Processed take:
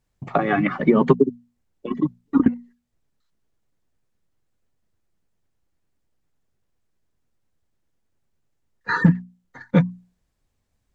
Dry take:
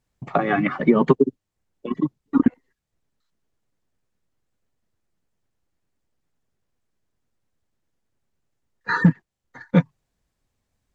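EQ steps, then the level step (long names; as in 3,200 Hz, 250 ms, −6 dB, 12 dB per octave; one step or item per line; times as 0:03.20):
low-shelf EQ 160 Hz +4 dB
mains-hum notches 60/120/180/240 Hz
0.0 dB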